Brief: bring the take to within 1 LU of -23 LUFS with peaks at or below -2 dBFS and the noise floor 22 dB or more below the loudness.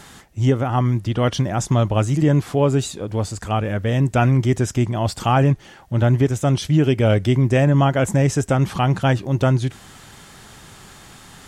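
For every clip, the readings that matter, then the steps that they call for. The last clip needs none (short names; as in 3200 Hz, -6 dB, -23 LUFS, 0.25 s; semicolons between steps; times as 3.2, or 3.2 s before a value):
loudness -19.0 LUFS; peak -6.5 dBFS; loudness target -23.0 LUFS
-> gain -4 dB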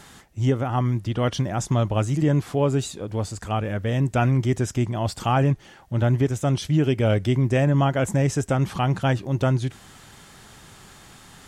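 loudness -23.0 LUFS; peak -10.5 dBFS; noise floor -48 dBFS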